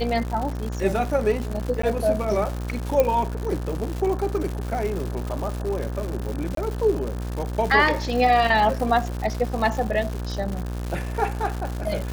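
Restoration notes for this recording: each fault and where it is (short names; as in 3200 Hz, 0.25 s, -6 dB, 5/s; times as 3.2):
buzz 60 Hz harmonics 30 -29 dBFS
crackle 220/s -28 dBFS
1.82–1.83 gap 14 ms
3 pop -7 dBFS
6.55–6.57 gap 23 ms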